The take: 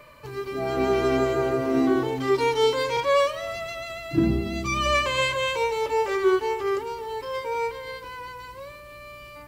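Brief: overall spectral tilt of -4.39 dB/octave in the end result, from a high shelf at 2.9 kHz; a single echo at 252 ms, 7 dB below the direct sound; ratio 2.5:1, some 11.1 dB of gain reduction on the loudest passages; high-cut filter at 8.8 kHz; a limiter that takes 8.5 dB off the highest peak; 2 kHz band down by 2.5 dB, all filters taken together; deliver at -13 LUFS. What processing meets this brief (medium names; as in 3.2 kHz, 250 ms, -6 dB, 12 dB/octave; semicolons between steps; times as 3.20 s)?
low-pass 8.8 kHz; peaking EQ 2 kHz -5 dB; treble shelf 2.9 kHz +4.5 dB; compression 2.5:1, threshold -34 dBFS; peak limiter -28 dBFS; delay 252 ms -7 dB; trim +22.5 dB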